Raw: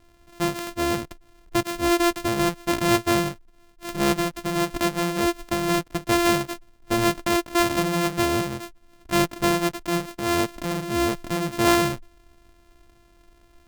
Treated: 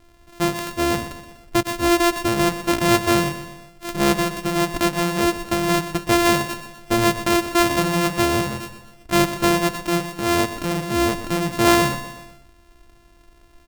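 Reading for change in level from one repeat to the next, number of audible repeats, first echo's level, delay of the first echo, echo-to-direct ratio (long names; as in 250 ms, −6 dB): −5.5 dB, 4, −12.0 dB, 123 ms, −10.5 dB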